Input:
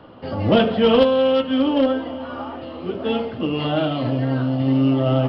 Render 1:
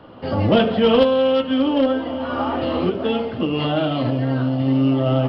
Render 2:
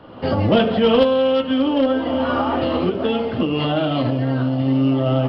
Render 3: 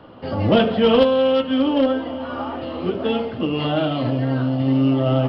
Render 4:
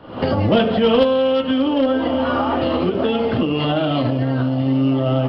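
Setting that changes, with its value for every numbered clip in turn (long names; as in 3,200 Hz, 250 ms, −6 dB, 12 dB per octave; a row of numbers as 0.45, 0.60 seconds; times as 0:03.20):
camcorder AGC, rising by: 14, 36, 5.5, 89 dB per second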